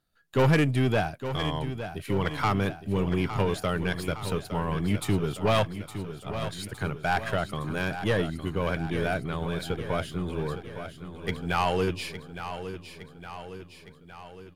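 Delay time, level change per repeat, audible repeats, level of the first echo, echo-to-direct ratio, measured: 0.862 s, -4.5 dB, 6, -10.5 dB, -8.5 dB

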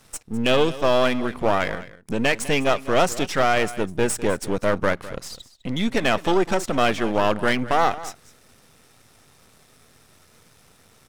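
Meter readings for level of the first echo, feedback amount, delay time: -16.5 dB, no steady repeat, 0.203 s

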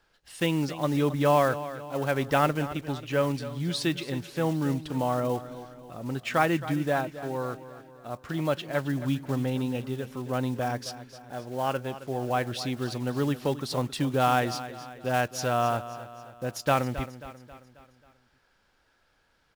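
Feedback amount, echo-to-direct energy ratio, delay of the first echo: 50%, -12.5 dB, 0.269 s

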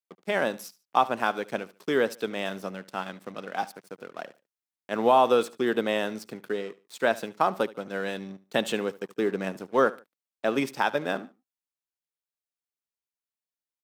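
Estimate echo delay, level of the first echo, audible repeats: 73 ms, -19.5 dB, 2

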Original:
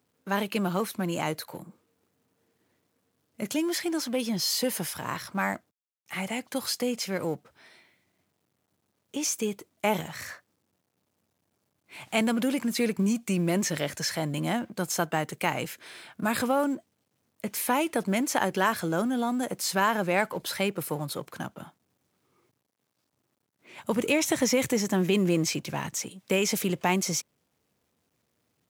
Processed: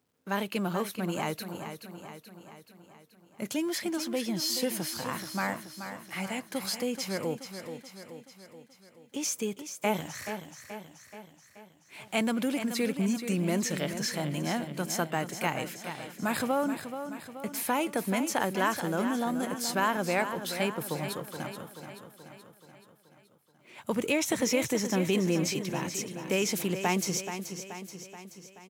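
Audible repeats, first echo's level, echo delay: 6, -9.5 dB, 0.429 s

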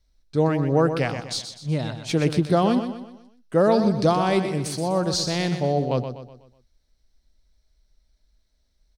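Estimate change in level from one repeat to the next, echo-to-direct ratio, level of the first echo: -7.5 dB, -8.0 dB, -9.0 dB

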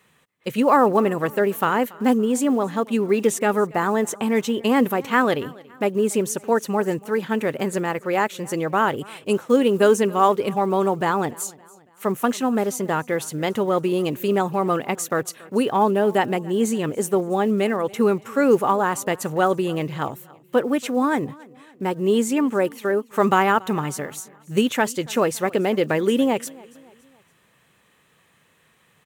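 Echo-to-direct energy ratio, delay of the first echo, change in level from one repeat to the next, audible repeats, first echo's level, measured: -22.0 dB, 0.282 s, -6.5 dB, 2, -23.0 dB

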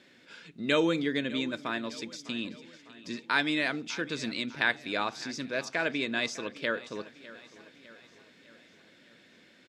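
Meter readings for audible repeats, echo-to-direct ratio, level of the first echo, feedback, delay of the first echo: 4, -16.5 dB, -18.0 dB, 54%, 0.603 s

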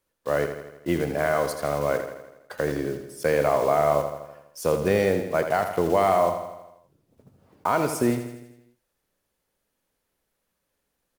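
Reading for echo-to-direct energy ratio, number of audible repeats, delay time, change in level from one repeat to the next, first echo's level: -7.5 dB, 6, 82 ms, -5.0 dB, -9.0 dB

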